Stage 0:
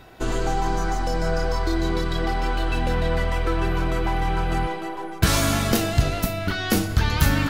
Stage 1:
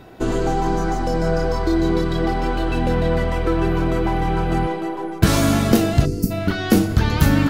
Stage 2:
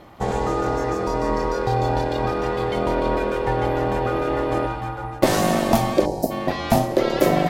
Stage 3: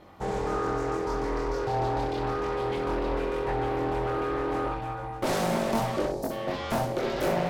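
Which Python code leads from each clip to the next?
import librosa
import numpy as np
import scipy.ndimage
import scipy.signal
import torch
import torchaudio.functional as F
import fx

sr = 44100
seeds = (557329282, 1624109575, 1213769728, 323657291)

y1 = fx.peak_eq(x, sr, hz=260.0, db=9.0, octaves=2.9)
y1 = fx.spec_box(y1, sr, start_s=6.05, length_s=0.26, low_hz=500.0, high_hz=4300.0, gain_db=-20)
y1 = y1 * 10.0 ** (-1.0 / 20.0)
y2 = y1 * np.sin(2.0 * np.pi * 450.0 * np.arange(len(y1)) / sr)
y3 = 10.0 ** (-14.0 / 20.0) * np.tanh(y2 / 10.0 ** (-14.0 / 20.0))
y3 = fx.room_early_taps(y3, sr, ms=(22, 64), db=(-3.0, -5.5))
y3 = fx.doppler_dist(y3, sr, depth_ms=0.44)
y3 = y3 * 10.0 ** (-8.0 / 20.0)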